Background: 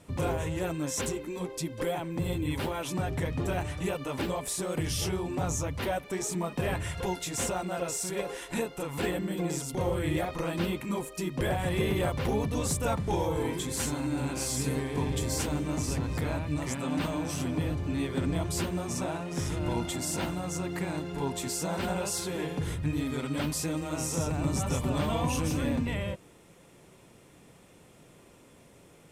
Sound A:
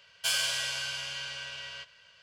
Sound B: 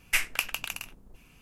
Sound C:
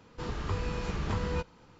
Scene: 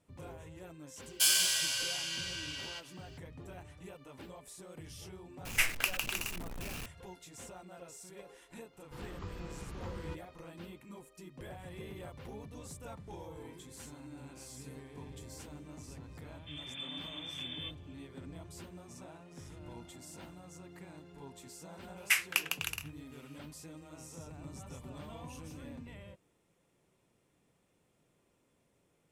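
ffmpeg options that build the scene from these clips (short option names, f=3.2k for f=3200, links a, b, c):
-filter_complex "[2:a]asplit=2[a][b];[3:a]asplit=2[c][d];[0:a]volume=-18dB[e];[1:a]aemphasis=mode=production:type=75kf[f];[a]aeval=exprs='val(0)+0.5*0.0224*sgn(val(0))':c=same[g];[d]lowpass=f=3.1k:t=q:w=0.5098,lowpass=f=3.1k:t=q:w=0.6013,lowpass=f=3.1k:t=q:w=0.9,lowpass=f=3.1k:t=q:w=2.563,afreqshift=-3600[h];[b]highpass=890[i];[f]atrim=end=2.22,asetpts=PTS-STARTPTS,volume=-6dB,afade=t=in:d=0.004:c=hsin,afade=t=out:st=2.216:d=0.004:c=hsin,adelay=960[j];[g]atrim=end=1.41,asetpts=PTS-STARTPTS,volume=-4dB,afade=t=in:d=0.004:c=hsin,afade=t=out:st=1.406:d=0.004:c=hsin,adelay=240345S[k];[c]atrim=end=1.79,asetpts=PTS-STARTPTS,volume=-12dB,afade=t=in:d=0.004:c=hsin,afade=t=out:st=1.786:d=0.004:c=hsin,adelay=8730[l];[h]atrim=end=1.79,asetpts=PTS-STARTPTS,volume=-12.5dB,afade=t=in:d=0.004:c=hsin,afade=t=out:st=1.786:d=0.004:c=hsin,adelay=16280[m];[i]atrim=end=1.41,asetpts=PTS-STARTPTS,volume=-2dB,afade=t=in:d=0.004:c=hsin,afade=t=out:st=1.406:d=0.004:c=hsin,adelay=21970[n];[e][j][k][l][m][n]amix=inputs=6:normalize=0"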